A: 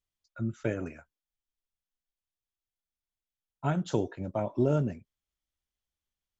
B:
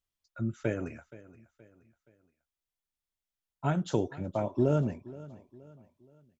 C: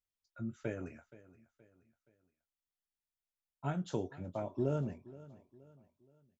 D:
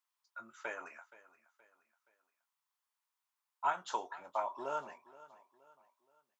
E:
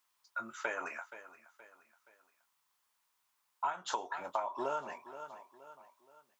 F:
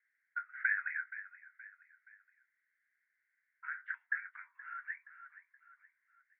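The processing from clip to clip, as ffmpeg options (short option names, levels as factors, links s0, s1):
-af "aecho=1:1:473|946|1419:0.112|0.046|0.0189"
-filter_complex "[0:a]asplit=2[s0][s1];[s1]adelay=22,volume=0.282[s2];[s0][s2]amix=inputs=2:normalize=0,volume=0.398"
-af "highpass=f=1000:t=q:w=4.2,volume=1.58"
-af "acompressor=threshold=0.00794:ratio=8,volume=3.16"
-af "asuperpass=centerf=1800:order=8:qfactor=2.8,volume=3.16"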